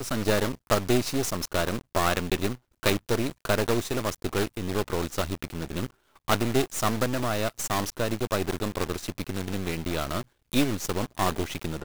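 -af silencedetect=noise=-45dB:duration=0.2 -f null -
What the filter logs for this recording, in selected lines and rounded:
silence_start: 2.56
silence_end: 2.83 | silence_duration: 0.27
silence_start: 5.91
silence_end: 6.16 | silence_duration: 0.25
silence_start: 10.23
silence_end: 10.52 | silence_duration: 0.29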